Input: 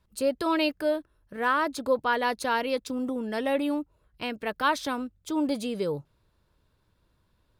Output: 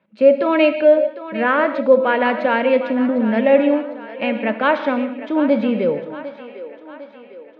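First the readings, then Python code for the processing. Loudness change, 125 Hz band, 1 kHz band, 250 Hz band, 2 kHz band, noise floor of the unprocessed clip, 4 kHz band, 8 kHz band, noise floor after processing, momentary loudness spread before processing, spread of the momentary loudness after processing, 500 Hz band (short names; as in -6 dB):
+11.0 dB, n/a, +7.0 dB, +11.0 dB, +9.0 dB, -70 dBFS, +2.5 dB, under -20 dB, -43 dBFS, 8 LU, 17 LU, +14.0 dB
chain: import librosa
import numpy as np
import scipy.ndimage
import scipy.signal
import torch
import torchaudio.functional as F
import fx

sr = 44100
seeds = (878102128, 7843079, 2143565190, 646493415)

y = fx.cabinet(x, sr, low_hz=180.0, low_slope=24, high_hz=2800.0, hz=(220.0, 400.0, 570.0, 1100.0, 2300.0), db=(9, -4, 9, -5, 6))
y = fx.echo_split(y, sr, split_hz=310.0, low_ms=90, high_ms=753, feedback_pct=52, wet_db=-13.5)
y = fx.rev_gated(y, sr, seeds[0], gate_ms=210, shape='flat', drr_db=9.0)
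y = y * librosa.db_to_amplitude(7.5)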